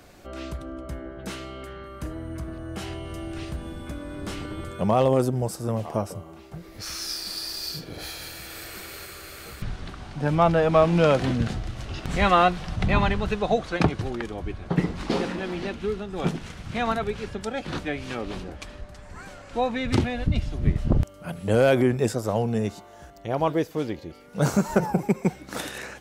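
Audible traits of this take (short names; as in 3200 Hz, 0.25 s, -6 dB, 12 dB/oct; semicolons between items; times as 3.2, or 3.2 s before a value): noise floor -46 dBFS; spectral tilt -5.5 dB/oct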